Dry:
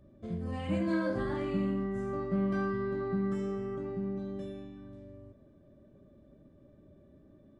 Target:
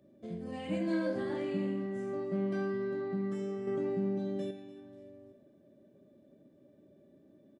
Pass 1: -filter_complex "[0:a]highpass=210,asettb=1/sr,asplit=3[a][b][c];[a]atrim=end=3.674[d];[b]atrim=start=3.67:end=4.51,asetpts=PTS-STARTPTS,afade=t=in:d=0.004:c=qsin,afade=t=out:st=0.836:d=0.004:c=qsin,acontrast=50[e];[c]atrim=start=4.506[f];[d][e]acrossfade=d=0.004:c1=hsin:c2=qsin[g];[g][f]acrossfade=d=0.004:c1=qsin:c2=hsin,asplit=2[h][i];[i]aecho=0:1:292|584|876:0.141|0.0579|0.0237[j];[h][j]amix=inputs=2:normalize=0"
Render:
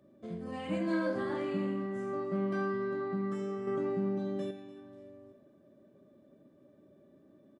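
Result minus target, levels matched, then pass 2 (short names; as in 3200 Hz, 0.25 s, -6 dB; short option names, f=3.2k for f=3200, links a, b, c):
1000 Hz band +5.0 dB
-filter_complex "[0:a]highpass=210,equalizer=f=1.2k:t=o:w=0.7:g=-9,asettb=1/sr,asplit=3[a][b][c];[a]atrim=end=3.674[d];[b]atrim=start=3.67:end=4.51,asetpts=PTS-STARTPTS,afade=t=in:d=0.004:c=qsin,afade=t=out:st=0.836:d=0.004:c=qsin,acontrast=50[e];[c]atrim=start=4.506[f];[d][e]acrossfade=d=0.004:c1=hsin:c2=qsin[g];[g][f]acrossfade=d=0.004:c1=qsin:c2=hsin,asplit=2[h][i];[i]aecho=0:1:292|584|876:0.141|0.0579|0.0237[j];[h][j]amix=inputs=2:normalize=0"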